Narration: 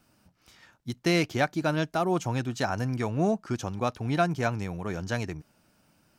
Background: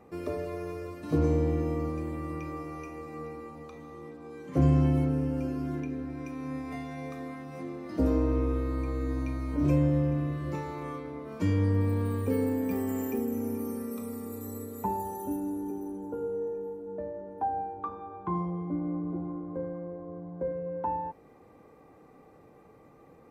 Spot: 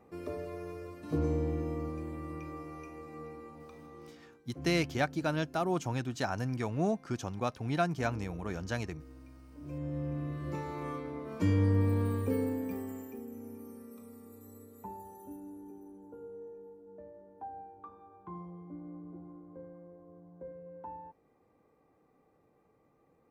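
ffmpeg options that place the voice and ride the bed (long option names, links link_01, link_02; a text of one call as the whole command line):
ffmpeg -i stem1.wav -i stem2.wav -filter_complex "[0:a]adelay=3600,volume=-5dB[link_01];[1:a]volume=14.5dB,afade=type=out:start_time=3.99:duration=0.42:silence=0.16788,afade=type=in:start_time=9.65:duration=1.23:silence=0.1,afade=type=out:start_time=12.02:duration=1.05:silence=0.237137[link_02];[link_01][link_02]amix=inputs=2:normalize=0" out.wav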